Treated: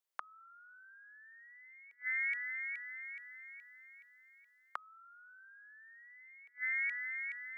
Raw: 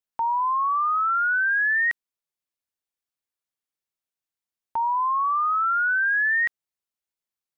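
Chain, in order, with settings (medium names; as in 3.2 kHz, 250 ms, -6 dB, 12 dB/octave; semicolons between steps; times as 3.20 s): two-band feedback delay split 1.2 kHz, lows 105 ms, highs 422 ms, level -14 dB; frequency shift +340 Hz; inverted gate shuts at -23 dBFS, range -36 dB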